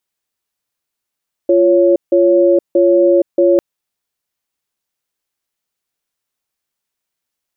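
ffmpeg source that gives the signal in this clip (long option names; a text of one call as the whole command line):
ffmpeg -f lavfi -i "aevalsrc='0.316*(sin(2*PI*347*t)+sin(2*PI*556*t))*clip(min(mod(t,0.63),0.47-mod(t,0.63))/0.005,0,1)':duration=2.1:sample_rate=44100" out.wav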